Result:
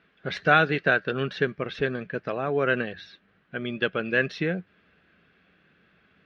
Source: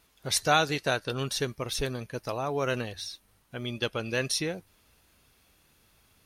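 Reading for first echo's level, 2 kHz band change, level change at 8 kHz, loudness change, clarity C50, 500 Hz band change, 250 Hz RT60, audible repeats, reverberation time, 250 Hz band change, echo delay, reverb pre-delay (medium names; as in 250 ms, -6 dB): no echo, +8.5 dB, under -20 dB, +4.0 dB, no reverb, +4.5 dB, no reverb, no echo, no reverb, +5.0 dB, no echo, no reverb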